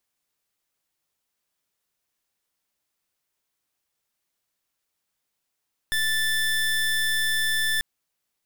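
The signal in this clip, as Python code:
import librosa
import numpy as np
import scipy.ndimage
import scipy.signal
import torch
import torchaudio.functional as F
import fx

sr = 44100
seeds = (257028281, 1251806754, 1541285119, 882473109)

y = fx.pulse(sr, length_s=1.89, hz=1760.0, level_db=-23.5, duty_pct=26)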